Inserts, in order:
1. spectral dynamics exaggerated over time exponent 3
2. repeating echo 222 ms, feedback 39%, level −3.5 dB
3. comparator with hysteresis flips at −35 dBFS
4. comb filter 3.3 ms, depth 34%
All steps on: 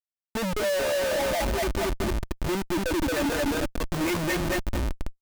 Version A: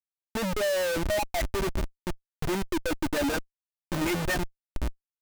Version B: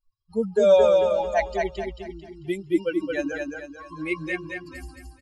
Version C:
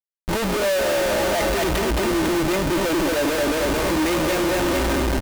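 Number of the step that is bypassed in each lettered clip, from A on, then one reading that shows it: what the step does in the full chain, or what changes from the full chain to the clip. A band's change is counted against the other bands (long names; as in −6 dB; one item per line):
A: 2, change in crest factor +1.5 dB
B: 3, change in crest factor +8.5 dB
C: 1, change in crest factor −4.0 dB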